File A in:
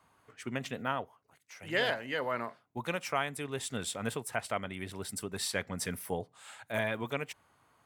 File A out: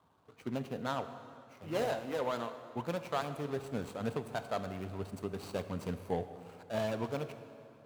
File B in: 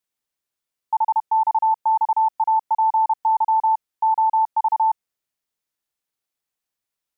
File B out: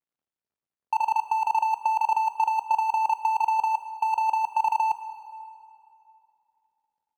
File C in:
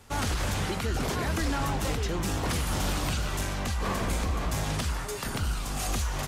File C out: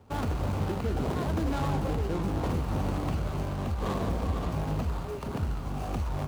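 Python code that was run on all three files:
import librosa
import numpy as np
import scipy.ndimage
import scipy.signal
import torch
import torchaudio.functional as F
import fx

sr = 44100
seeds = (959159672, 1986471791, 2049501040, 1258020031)

y = scipy.signal.medfilt(x, 25)
y = scipy.signal.sosfilt(scipy.signal.butter(2, 58.0, 'highpass', fs=sr, output='sos'), y)
y = fx.over_compress(y, sr, threshold_db=-23.0, ratio=-0.5)
y = fx.rev_plate(y, sr, seeds[0], rt60_s=2.7, hf_ratio=0.75, predelay_ms=0, drr_db=9.5)
y = y * librosa.db_to_amplitude(1.0)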